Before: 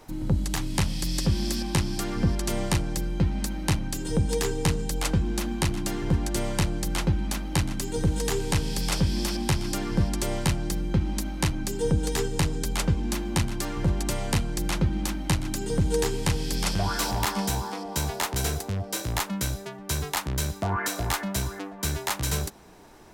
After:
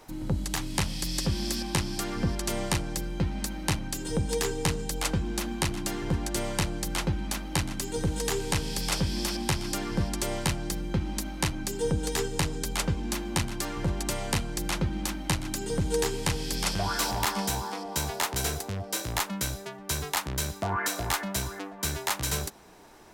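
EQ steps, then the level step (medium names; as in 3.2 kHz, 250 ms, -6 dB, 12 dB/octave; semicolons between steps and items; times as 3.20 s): bass shelf 310 Hz -5.5 dB; 0.0 dB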